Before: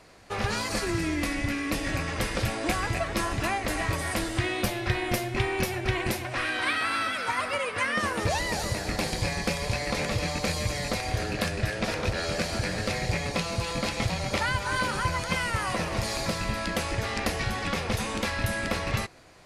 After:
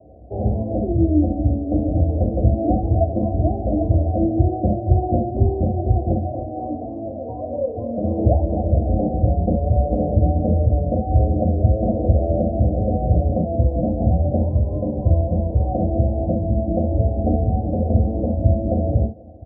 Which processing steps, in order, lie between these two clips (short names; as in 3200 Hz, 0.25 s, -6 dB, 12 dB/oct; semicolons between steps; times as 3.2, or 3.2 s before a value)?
steep low-pass 710 Hz 72 dB/oct; echo 0.968 s -23.5 dB; reverb, pre-delay 3 ms, DRR 0 dB